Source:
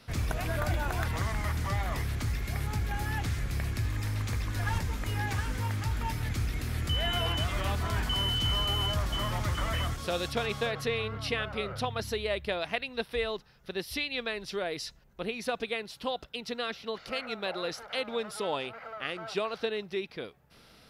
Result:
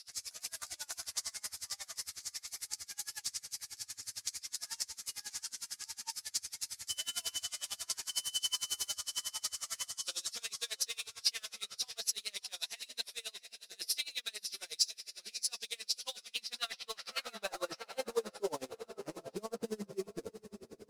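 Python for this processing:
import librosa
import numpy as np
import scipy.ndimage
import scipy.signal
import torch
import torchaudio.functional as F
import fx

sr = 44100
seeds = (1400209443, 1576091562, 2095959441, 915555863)

p1 = fx.law_mismatch(x, sr, coded='mu')
p2 = fx.filter_sweep_bandpass(p1, sr, from_hz=6600.0, to_hz=220.0, start_s=15.69, end_s=18.97, q=0.82)
p3 = fx.quant_dither(p2, sr, seeds[0], bits=6, dither='none')
p4 = p2 + (p3 * 10.0 ** (-11.0 / 20.0))
p5 = fx.band_shelf(p4, sr, hz=7200.0, db=13.0, octaves=1.7)
p6 = p5 + fx.echo_diffused(p5, sr, ms=615, feedback_pct=43, wet_db=-10.0, dry=0)
p7 = fx.chorus_voices(p6, sr, voices=4, hz=0.26, base_ms=12, depth_ms=3.1, mix_pct=45)
p8 = p7 * 10.0 ** (-29 * (0.5 - 0.5 * np.cos(2.0 * np.pi * 11.0 * np.arange(len(p7)) / sr)) / 20.0)
y = p8 * 10.0 ** (2.0 / 20.0)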